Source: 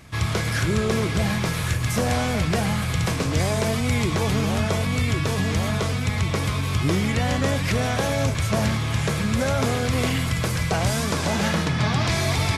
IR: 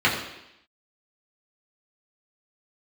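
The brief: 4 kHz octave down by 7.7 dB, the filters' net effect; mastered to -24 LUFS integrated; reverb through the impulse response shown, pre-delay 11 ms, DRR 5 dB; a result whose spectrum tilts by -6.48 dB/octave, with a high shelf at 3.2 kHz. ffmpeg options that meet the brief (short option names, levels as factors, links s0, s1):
-filter_complex "[0:a]highshelf=f=3200:g=-7.5,equalizer=f=4000:t=o:g=-4.5,asplit=2[s0][s1];[1:a]atrim=start_sample=2205,adelay=11[s2];[s1][s2]afir=irnorm=-1:irlink=0,volume=0.0668[s3];[s0][s3]amix=inputs=2:normalize=0,volume=0.841"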